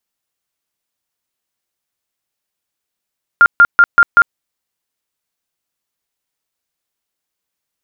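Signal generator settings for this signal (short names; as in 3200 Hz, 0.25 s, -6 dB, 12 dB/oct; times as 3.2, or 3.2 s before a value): tone bursts 1400 Hz, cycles 69, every 0.19 s, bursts 5, -2.5 dBFS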